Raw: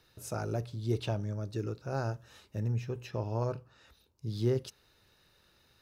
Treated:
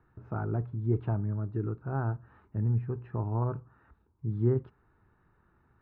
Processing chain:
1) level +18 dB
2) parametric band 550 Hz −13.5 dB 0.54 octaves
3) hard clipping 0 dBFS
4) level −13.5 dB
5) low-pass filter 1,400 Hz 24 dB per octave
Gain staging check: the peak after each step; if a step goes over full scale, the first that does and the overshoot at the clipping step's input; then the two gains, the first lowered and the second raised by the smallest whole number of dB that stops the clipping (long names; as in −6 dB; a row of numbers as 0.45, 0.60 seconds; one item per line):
−0.5, −2.0, −2.0, −15.5, −15.5 dBFS
no step passes full scale